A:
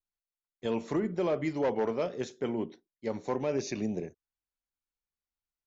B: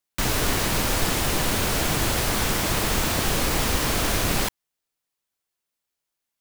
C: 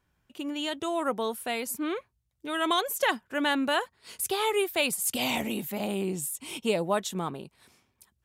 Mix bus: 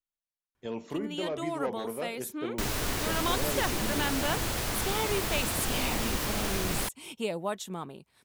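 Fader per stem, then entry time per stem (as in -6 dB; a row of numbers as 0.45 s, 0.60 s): -5.0 dB, -8.0 dB, -5.5 dB; 0.00 s, 2.40 s, 0.55 s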